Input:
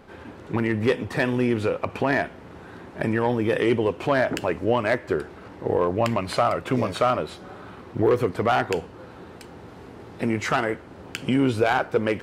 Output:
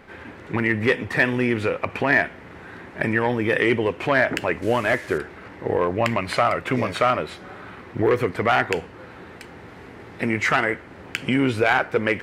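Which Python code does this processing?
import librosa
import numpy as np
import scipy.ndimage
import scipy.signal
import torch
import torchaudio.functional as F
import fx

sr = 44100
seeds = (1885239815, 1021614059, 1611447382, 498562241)

y = fx.delta_mod(x, sr, bps=64000, step_db=-37.5, at=(4.62, 5.18))
y = fx.peak_eq(y, sr, hz=2000.0, db=9.5, octaves=0.87)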